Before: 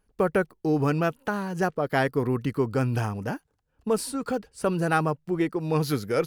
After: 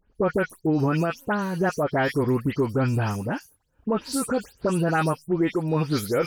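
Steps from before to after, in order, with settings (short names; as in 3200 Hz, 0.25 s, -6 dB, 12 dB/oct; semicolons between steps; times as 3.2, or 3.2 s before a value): spectral delay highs late, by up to 0.15 s; limiter -17 dBFS, peak gain reduction 5.5 dB; gain +3.5 dB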